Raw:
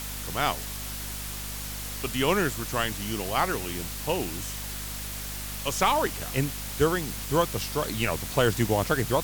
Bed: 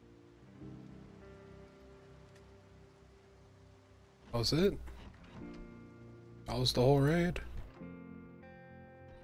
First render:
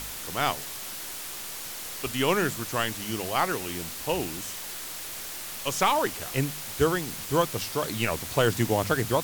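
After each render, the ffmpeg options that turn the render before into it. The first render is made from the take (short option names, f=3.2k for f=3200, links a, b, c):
-af "bandreject=f=50:t=h:w=4,bandreject=f=100:t=h:w=4,bandreject=f=150:t=h:w=4,bandreject=f=200:t=h:w=4,bandreject=f=250:t=h:w=4"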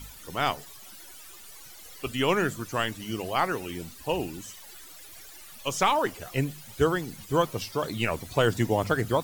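-af "afftdn=nr=15:nf=-38"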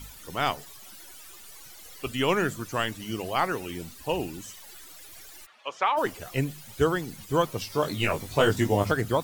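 -filter_complex "[0:a]asplit=3[a][b][c];[a]afade=t=out:st=5.45:d=0.02[d];[b]highpass=620,lowpass=2.4k,afade=t=in:st=5.45:d=0.02,afade=t=out:st=5.96:d=0.02[e];[c]afade=t=in:st=5.96:d=0.02[f];[d][e][f]amix=inputs=3:normalize=0,asettb=1/sr,asplit=3[g][h][i];[g]atrim=end=7.684[j];[h]atrim=start=7.68:end=8.92,asetpts=PTS-STARTPTS,afade=t=in:d=0.004:c=qsin,afade=t=out:st=1.236:d=0.004:c=qsin,asplit=2[k][l];[l]adelay=20,volume=-3dB[m];[k][m]amix=inputs=2:normalize=0,atrim=end_sample=54684[n];[i]atrim=start=8.916[o];[j][n]acrossfade=d=0.004:c1=hsin:c2=qsin[p];[p][o]acrossfade=d=0.004:c1=qsin:c2=hsin"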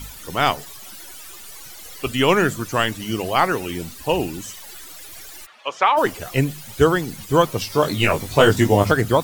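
-af "volume=8dB"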